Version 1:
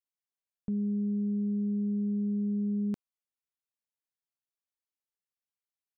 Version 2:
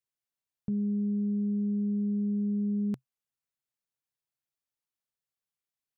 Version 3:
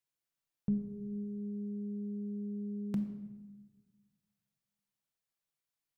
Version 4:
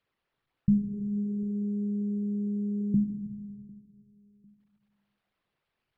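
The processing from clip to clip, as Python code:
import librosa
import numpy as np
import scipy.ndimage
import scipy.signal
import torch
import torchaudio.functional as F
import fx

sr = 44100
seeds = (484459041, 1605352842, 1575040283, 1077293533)

y1 = fx.peak_eq(x, sr, hz=130.0, db=10.0, octaves=0.4)
y2 = fx.room_shoebox(y1, sr, seeds[0], volume_m3=690.0, walls='mixed', distance_m=0.7)
y3 = fx.envelope_sharpen(y2, sr, power=3.0)
y3 = fx.echo_feedback(y3, sr, ms=750, feedback_pct=31, wet_db=-24)
y3 = np.interp(np.arange(len(y3)), np.arange(len(y3))[::6], y3[::6])
y3 = F.gain(torch.from_numpy(y3), 9.0).numpy()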